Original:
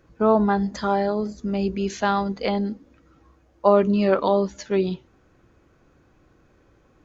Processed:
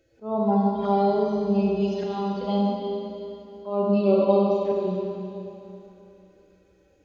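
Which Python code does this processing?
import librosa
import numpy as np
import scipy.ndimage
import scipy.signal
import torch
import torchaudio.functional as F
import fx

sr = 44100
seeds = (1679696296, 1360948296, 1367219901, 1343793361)

y = fx.hpss_only(x, sr, part='harmonic')
y = fx.low_shelf(y, sr, hz=100.0, db=-9.0)
y = fx.echo_wet_bandpass(y, sr, ms=68, feedback_pct=52, hz=690.0, wet_db=-7.5)
y = fx.env_phaser(y, sr, low_hz=180.0, high_hz=1700.0, full_db=-24.5)
y = fx.auto_swell(y, sr, attack_ms=327.0)
y = fx.rev_schroeder(y, sr, rt60_s=3.0, comb_ms=33, drr_db=-1.5)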